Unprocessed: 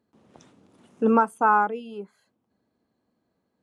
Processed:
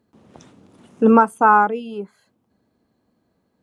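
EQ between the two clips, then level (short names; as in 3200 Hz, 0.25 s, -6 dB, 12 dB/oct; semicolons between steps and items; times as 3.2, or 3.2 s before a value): low shelf 140 Hz +5.5 dB; +6.0 dB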